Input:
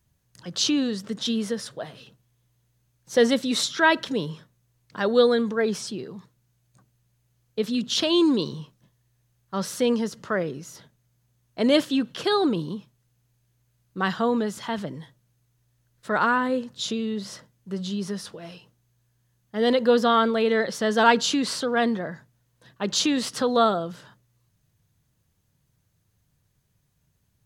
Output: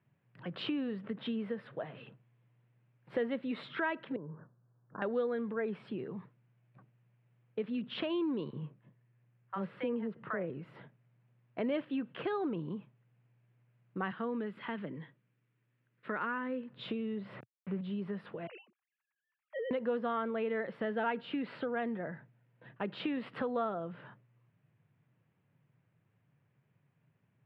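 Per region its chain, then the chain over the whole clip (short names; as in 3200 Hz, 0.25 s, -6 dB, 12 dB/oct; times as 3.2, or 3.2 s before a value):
4.16–5.02 compressor 1.5:1, threshold -47 dBFS + steep low-pass 1600 Hz 72 dB/oct
8.5–10.5 high shelf 5100 Hz -11.5 dB + bands offset in time highs, lows 30 ms, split 740 Hz
14.11–16.72 HPF 190 Hz + bell 740 Hz -9 dB 0.99 oct
17.3–17.81 level-crossing sampler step -41.5 dBFS + low shelf 160 Hz +10 dB
18.47–19.71 sine-wave speech + compressor, threshold -30 dBFS
20.84–23.1 LPF 7700 Hz + notch 1100 Hz, Q 8.5
whole clip: elliptic band-pass 120–2500 Hz, stop band 40 dB; compressor 2.5:1, threshold -38 dBFS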